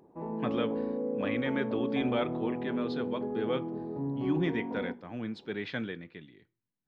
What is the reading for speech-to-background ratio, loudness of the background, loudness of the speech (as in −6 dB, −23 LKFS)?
−0.5 dB, −35.0 LKFS, −35.5 LKFS